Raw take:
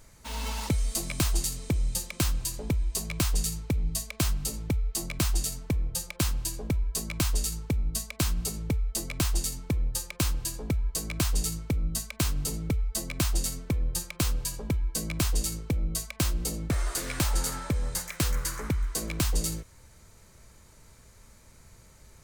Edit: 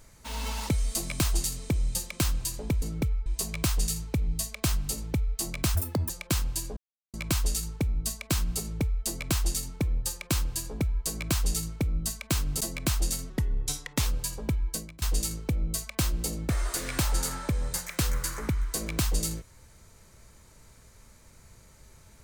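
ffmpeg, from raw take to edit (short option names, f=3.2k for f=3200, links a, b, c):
-filter_complex "[0:a]asplit=11[a][b][c][d][e][f][g][h][i][j][k];[a]atrim=end=2.822[l];[b]atrim=start=12.498:end=12.942[m];[c]atrim=start=2.818:end=5.314[n];[d]atrim=start=5.31:end=5.99,asetpts=PTS-STARTPTS,asetrate=86436,aresample=44100[o];[e]atrim=start=5.986:end=6.66,asetpts=PTS-STARTPTS,afade=t=out:st=0.67:d=0.004:c=hsin[p];[f]atrim=start=6.66:end=7.03,asetpts=PTS-STARTPTS,volume=0[q];[g]atrim=start=7.03:end=12.502,asetpts=PTS-STARTPTS,afade=t=in:d=0.004:c=hsin[r];[h]atrim=start=12.938:end=13.634[s];[i]atrim=start=13.63:end=14.27,asetpts=PTS-STARTPTS,asetrate=37044,aresample=44100[t];[j]atrim=start=14.266:end=15.23,asetpts=PTS-STARTPTS,afade=t=out:st=0.664:d=0.3:c=qua:silence=0.0891251[u];[k]atrim=start=15.23,asetpts=PTS-STARTPTS,afade=t=in:d=0.004:c=hsin:silence=0.0891251[v];[l][m]acrossfade=d=0.004:c1=hsin:c2=hsin[w];[w][n]acrossfade=d=0.004:c1=hsin:c2=hsin[x];[x][o]acrossfade=d=0.004:c1=hsin:c2=hsin[y];[p][q][r]concat=n=3:v=0:a=1[z];[y][z]acrossfade=d=0.004:c1=hsin:c2=hsin[aa];[aa][s]acrossfade=d=0.004:c1=hsin:c2=hsin[ab];[ab][t]acrossfade=d=0.004:c1=hsin:c2=hsin[ac];[u][v]concat=n=2:v=0:a=1[ad];[ac][ad]acrossfade=d=0.004:c1=hsin:c2=hsin"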